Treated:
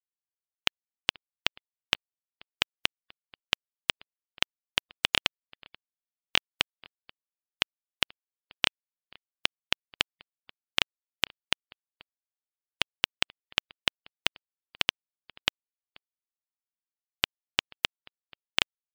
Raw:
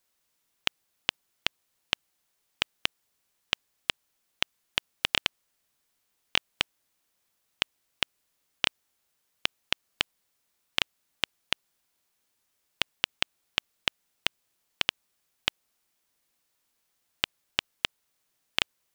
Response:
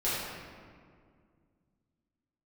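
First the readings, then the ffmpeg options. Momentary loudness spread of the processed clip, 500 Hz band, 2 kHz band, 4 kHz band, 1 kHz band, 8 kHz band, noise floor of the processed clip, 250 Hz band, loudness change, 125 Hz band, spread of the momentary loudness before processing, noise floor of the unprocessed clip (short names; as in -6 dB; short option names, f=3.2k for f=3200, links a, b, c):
3 LU, +1.0 dB, +1.0 dB, +1.0 dB, +1.0 dB, +1.0 dB, under -85 dBFS, +1.0 dB, +1.0 dB, +1.0 dB, 3 LU, -76 dBFS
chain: -filter_complex "[0:a]asplit=2[a][b];[b]adelay=484,volume=-24dB,highshelf=f=4k:g=-10.9[c];[a][c]amix=inputs=2:normalize=0,afftfilt=real='re*gte(hypot(re,im),0.00112)':imag='im*gte(hypot(re,im),0.00112)':win_size=1024:overlap=0.75,volume=1dB"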